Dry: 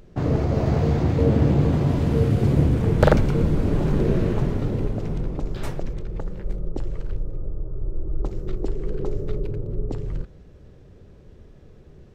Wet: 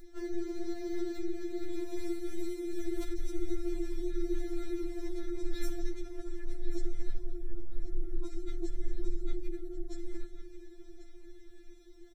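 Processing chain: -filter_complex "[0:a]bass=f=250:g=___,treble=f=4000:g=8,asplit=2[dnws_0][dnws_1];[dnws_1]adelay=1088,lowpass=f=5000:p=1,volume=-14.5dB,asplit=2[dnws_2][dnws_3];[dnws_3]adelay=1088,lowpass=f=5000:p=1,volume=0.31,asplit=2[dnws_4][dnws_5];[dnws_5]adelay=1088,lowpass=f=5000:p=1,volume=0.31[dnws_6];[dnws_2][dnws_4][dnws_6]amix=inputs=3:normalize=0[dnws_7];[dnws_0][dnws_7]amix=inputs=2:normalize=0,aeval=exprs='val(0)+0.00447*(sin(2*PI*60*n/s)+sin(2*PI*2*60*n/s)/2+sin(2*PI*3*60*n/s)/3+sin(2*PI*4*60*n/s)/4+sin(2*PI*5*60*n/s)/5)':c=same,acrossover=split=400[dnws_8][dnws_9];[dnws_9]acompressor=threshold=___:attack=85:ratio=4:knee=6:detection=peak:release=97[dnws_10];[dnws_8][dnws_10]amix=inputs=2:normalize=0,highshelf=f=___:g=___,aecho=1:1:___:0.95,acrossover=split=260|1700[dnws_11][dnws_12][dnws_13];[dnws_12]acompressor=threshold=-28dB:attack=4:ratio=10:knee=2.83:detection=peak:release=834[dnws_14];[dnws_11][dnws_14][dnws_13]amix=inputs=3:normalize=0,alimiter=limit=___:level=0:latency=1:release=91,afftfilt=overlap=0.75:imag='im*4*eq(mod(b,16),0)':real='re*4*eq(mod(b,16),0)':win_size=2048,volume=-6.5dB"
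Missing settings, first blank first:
-1, -46dB, 5400, 4, 5.3, -11.5dB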